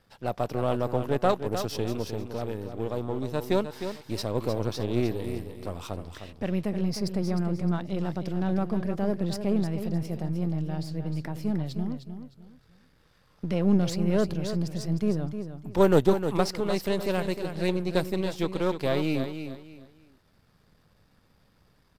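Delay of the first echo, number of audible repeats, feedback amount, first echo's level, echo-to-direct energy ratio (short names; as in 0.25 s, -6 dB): 0.307 s, 3, 27%, -9.0 dB, -8.5 dB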